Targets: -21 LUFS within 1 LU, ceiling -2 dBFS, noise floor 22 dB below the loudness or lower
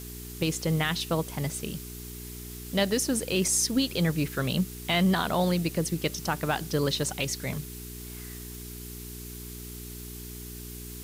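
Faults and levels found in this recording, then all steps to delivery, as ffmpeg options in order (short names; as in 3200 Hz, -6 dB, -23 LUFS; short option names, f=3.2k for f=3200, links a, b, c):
hum 60 Hz; harmonics up to 420 Hz; hum level -40 dBFS; noise floor -41 dBFS; noise floor target -50 dBFS; loudness -27.5 LUFS; peak -14.0 dBFS; loudness target -21.0 LUFS
-> -af "bandreject=f=60:t=h:w=4,bandreject=f=120:t=h:w=4,bandreject=f=180:t=h:w=4,bandreject=f=240:t=h:w=4,bandreject=f=300:t=h:w=4,bandreject=f=360:t=h:w=4,bandreject=f=420:t=h:w=4"
-af "afftdn=nr=9:nf=-41"
-af "volume=6.5dB"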